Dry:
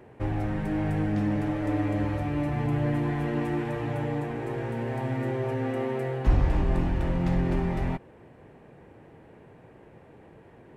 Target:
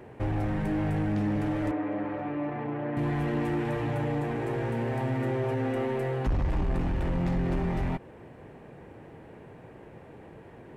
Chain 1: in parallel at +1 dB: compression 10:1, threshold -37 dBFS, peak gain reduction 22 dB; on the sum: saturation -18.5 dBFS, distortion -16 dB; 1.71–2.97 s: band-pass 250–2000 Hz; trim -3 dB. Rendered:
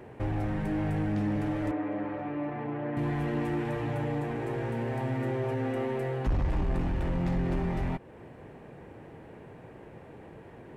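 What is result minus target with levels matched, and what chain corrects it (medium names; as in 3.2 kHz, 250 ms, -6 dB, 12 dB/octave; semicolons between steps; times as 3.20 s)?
compression: peak gain reduction +7.5 dB
in parallel at +1 dB: compression 10:1, threshold -28.5 dBFS, peak gain reduction 14 dB; on the sum: saturation -18.5 dBFS, distortion -15 dB; 1.71–2.97 s: band-pass 250–2000 Hz; trim -3 dB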